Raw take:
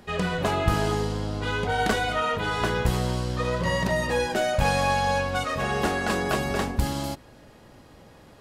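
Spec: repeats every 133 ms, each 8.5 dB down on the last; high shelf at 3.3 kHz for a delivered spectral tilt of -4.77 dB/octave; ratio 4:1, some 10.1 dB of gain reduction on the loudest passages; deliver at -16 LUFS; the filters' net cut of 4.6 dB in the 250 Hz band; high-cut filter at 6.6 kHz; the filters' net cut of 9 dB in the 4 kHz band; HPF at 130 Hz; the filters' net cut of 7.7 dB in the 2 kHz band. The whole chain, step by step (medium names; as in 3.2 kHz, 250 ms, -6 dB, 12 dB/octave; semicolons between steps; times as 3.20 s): high-pass 130 Hz; low-pass 6.6 kHz; peaking EQ 250 Hz -5.5 dB; peaking EQ 2 kHz -8 dB; treble shelf 3.3 kHz -6 dB; peaking EQ 4 kHz -4 dB; compression 4:1, threshold -35 dBFS; feedback delay 133 ms, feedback 38%, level -8.5 dB; trim +21 dB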